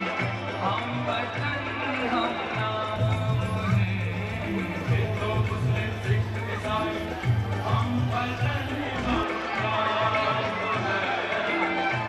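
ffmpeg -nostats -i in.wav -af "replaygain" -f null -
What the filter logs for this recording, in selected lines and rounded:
track_gain = +9.6 dB
track_peak = 0.185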